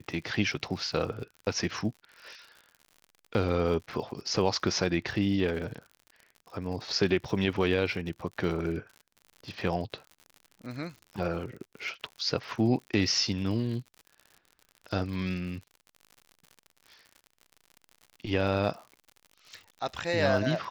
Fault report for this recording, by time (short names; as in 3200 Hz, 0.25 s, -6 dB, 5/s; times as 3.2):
crackle 76/s -40 dBFS